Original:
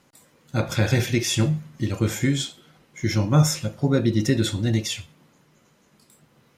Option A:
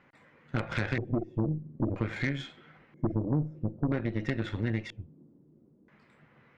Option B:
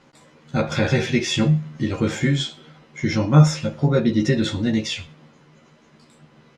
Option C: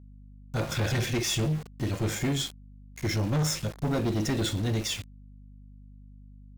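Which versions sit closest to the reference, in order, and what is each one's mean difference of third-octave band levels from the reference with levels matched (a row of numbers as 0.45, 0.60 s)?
B, C, A; 4.0, 6.0, 9.5 dB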